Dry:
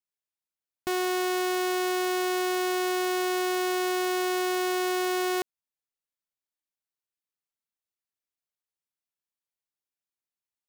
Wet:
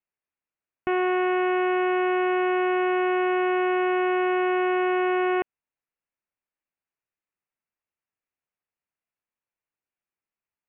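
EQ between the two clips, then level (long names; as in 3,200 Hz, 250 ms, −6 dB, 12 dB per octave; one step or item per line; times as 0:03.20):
Butterworth low-pass 2,800 Hz 72 dB per octave
+4.5 dB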